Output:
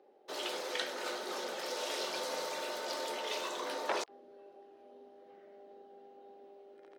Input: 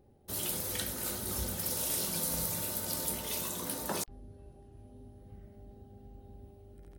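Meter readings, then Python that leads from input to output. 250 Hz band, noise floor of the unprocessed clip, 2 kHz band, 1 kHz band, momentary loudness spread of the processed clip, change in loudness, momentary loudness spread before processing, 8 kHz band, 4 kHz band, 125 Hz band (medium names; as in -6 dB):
-6.5 dB, -57 dBFS, +5.0 dB, +5.5 dB, 21 LU, -4.5 dB, 22 LU, -11.5 dB, +1.5 dB, under -25 dB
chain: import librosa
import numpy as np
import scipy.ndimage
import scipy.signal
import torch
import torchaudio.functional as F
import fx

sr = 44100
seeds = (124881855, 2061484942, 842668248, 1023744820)

y = scipy.signal.sosfilt(scipy.signal.butter(4, 400.0, 'highpass', fs=sr, output='sos'), x)
y = fx.air_absorb(y, sr, metres=170.0)
y = fx.transformer_sat(y, sr, knee_hz=1700.0)
y = y * 10.0 ** (7.0 / 20.0)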